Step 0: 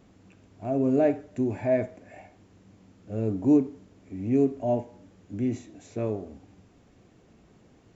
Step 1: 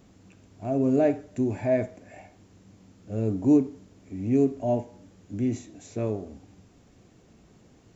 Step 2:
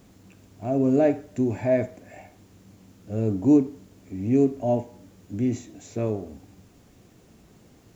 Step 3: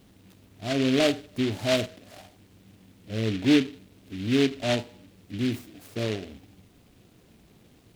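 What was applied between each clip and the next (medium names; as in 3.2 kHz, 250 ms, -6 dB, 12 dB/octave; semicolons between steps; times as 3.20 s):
tone controls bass +2 dB, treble +6 dB
bit crusher 11-bit; trim +2 dB
delay time shaken by noise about 2.6 kHz, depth 0.13 ms; trim -2.5 dB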